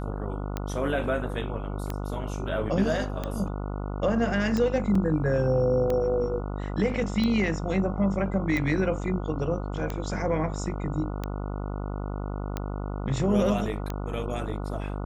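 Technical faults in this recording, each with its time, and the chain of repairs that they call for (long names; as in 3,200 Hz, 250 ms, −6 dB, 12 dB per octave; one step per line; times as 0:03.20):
mains buzz 50 Hz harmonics 29 −32 dBFS
scratch tick 45 rpm −16 dBFS
0:04.95: drop-out 4.2 ms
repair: click removal
hum removal 50 Hz, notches 29
repair the gap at 0:04.95, 4.2 ms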